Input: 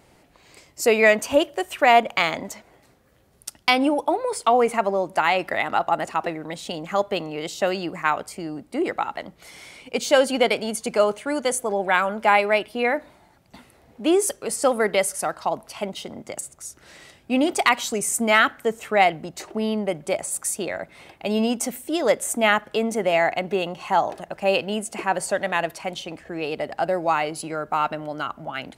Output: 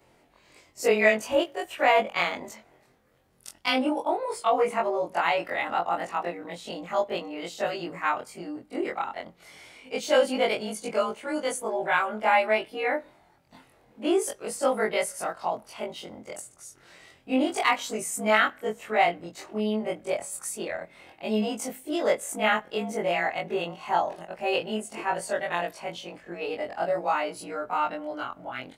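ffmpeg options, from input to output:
-af "afftfilt=real='re':imag='-im':win_size=2048:overlap=0.75,bass=f=250:g=-4,treble=f=4000:g=-4"

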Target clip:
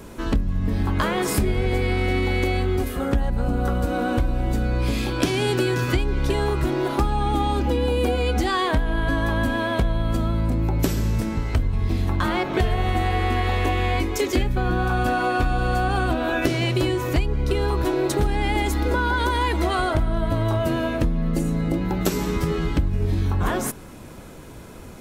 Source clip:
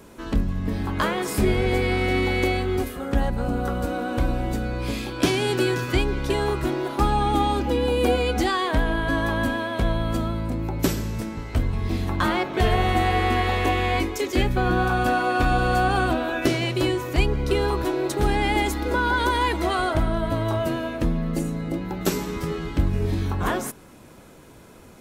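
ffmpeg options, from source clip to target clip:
-af "lowshelf=f=110:g=7.5,acompressor=threshold=0.0708:ratio=6,volume=1.78"

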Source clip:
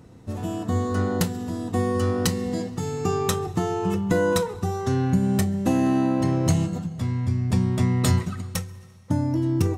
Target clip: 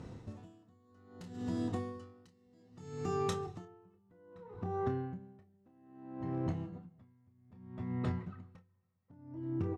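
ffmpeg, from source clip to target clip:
-filter_complex "[0:a]asetnsamples=n=441:p=0,asendcmd='3.65 lowpass f 1800',lowpass=6400,acompressor=threshold=0.0178:ratio=4,volume=21.1,asoftclip=hard,volume=0.0473,asplit=2[s0][s1];[s1]adelay=28,volume=0.355[s2];[s0][s2]amix=inputs=2:normalize=0,aeval=exprs='val(0)*pow(10,-32*(0.5-0.5*cos(2*PI*0.62*n/s))/20)':c=same,volume=1.12"

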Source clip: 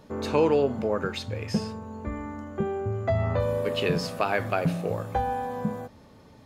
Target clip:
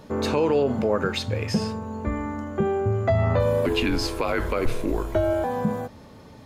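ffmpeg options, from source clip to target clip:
-filter_complex "[0:a]alimiter=limit=0.112:level=0:latency=1:release=51,asettb=1/sr,asplit=3[s0][s1][s2];[s0]atrim=end=3.664[s3];[s1]atrim=start=3.66:end=5.44,asetpts=PTS-STARTPTS,afade=t=in:d=0.004:c=qsin,afade=t=out:st=1.776:d=0.004:c=qsin,afreqshift=-160[s4];[s2]atrim=start=5.436[s5];[s3][s4]acrossfade=d=0.004:c1=hsin:c2=qsin[s6];[s6][s5]acrossfade=d=0.004:c1=qsin:c2=hsin,volume=2"

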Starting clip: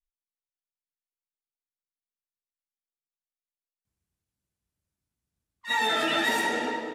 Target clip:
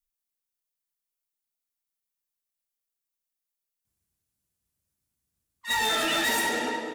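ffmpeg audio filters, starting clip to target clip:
-af "volume=14.1,asoftclip=hard,volume=0.0708,crystalizer=i=1.5:c=0"

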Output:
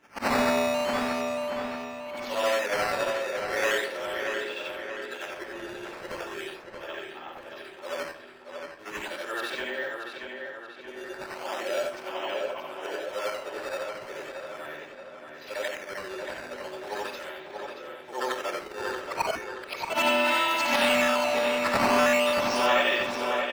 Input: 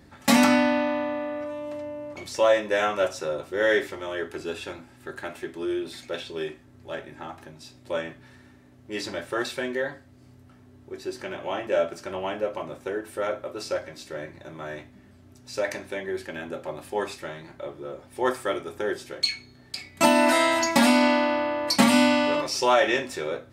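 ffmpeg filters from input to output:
-filter_complex "[0:a]afftfilt=real='re':imag='-im':win_size=8192:overlap=0.75,highpass=f=310:p=1,equalizer=f=2900:w=2:g=8,acrusher=samples=8:mix=1:aa=0.000001:lfo=1:lforange=12.8:lforate=0.38,asplit=2[s0][s1];[s1]highpass=f=720:p=1,volume=2.24,asoftclip=type=tanh:threshold=0.282[s2];[s0][s2]amix=inputs=2:normalize=0,lowpass=f=3100:p=1,volume=0.501,asplit=2[s3][s4];[s4]adelay=629,lowpass=f=4400:p=1,volume=0.531,asplit=2[s5][s6];[s6]adelay=629,lowpass=f=4400:p=1,volume=0.54,asplit=2[s7][s8];[s8]adelay=629,lowpass=f=4400:p=1,volume=0.54,asplit=2[s9][s10];[s10]adelay=629,lowpass=f=4400:p=1,volume=0.54,asplit=2[s11][s12];[s12]adelay=629,lowpass=f=4400:p=1,volume=0.54,asplit=2[s13][s14];[s14]adelay=629,lowpass=f=4400:p=1,volume=0.54,asplit=2[s15][s16];[s16]adelay=629,lowpass=f=4400:p=1,volume=0.54[s17];[s5][s7][s9][s11][s13][s15][s17]amix=inputs=7:normalize=0[s18];[s3][s18]amix=inputs=2:normalize=0"

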